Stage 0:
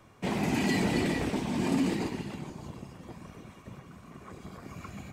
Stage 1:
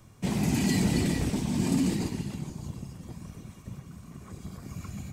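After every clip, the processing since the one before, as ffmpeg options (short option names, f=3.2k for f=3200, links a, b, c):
-af "bass=f=250:g=12,treble=f=4k:g=12,volume=-4.5dB"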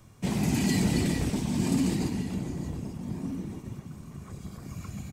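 -filter_complex "[0:a]asplit=2[a][b];[b]adelay=1516,volume=-9dB,highshelf=f=4k:g=-34.1[c];[a][c]amix=inputs=2:normalize=0"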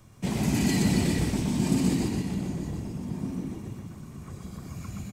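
-af "aecho=1:1:123:0.631"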